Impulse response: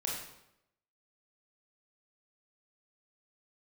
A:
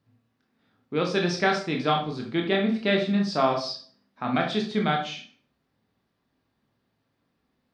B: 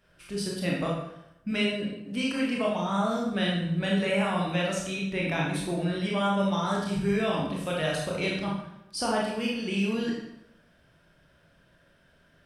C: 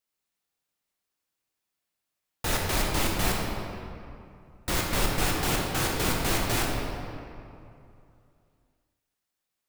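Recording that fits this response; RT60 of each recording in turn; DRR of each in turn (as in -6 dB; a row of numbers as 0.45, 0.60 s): B; 0.45, 0.85, 2.6 s; 1.0, -3.5, -2.0 dB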